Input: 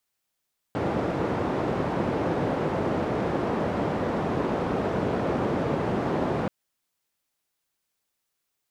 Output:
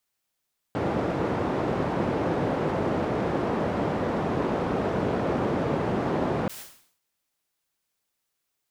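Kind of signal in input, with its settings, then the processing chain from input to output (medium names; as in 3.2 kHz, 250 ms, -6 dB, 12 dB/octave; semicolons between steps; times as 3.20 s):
noise band 96–570 Hz, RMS -26.5 dBFS 5.73 s
decay stretcher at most 100 dB/s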